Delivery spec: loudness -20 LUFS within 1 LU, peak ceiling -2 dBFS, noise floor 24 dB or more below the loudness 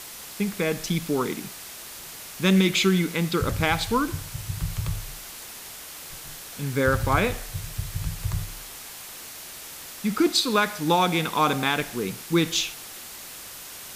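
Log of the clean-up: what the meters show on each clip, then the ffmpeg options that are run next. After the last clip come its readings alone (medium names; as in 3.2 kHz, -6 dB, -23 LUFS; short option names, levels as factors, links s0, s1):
noise floor -41 dBFS; noise floor target -49 dBFS; loudness -25.0 LUFS; peak level -8.0 dBFS; loudness target -20.0 LUFS
-> -af "afftdn=nr=8:nf=-41"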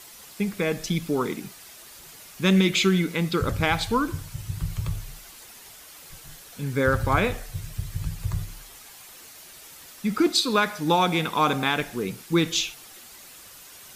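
noise floor -47 dBFS; noise floor target -49 dBFS
-> -af "afftdn=nr=6:nf=-47"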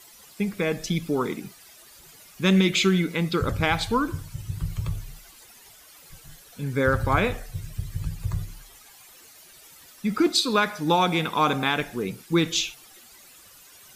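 noise floor -51 dBFS; loudness -25.0 LUFS; peak level -8.5 dBFS; loudness target -20.0 LUFS
-> -af "volume=1.78"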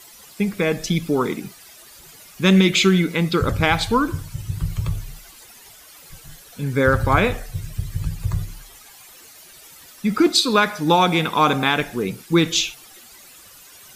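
loudness -20.0 LUFS; peak level -3.5 dBFS; noise floor -46 dBFS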